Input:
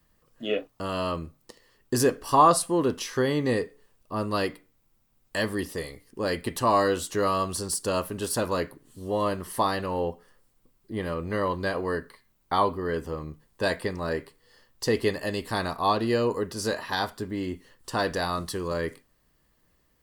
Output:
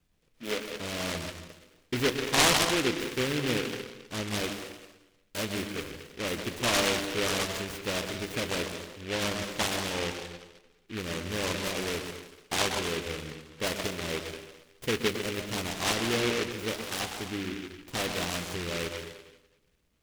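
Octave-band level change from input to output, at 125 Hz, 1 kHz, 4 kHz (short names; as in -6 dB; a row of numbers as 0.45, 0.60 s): -3.5, -9.0, +5.5 dB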